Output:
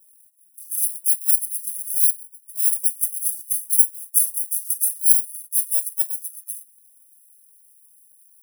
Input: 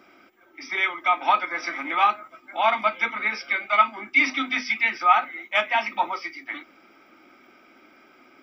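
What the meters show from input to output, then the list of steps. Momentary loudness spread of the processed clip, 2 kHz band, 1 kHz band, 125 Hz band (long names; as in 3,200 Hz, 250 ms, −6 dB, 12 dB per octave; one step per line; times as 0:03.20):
13 LU, below −40 dB, below −40 dB, can't be measured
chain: samples in bit-reversed order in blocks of 32 samples
inverse Chebyshev high-pass filter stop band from 1,700 Hz, stop band 80 dB
level +3 dB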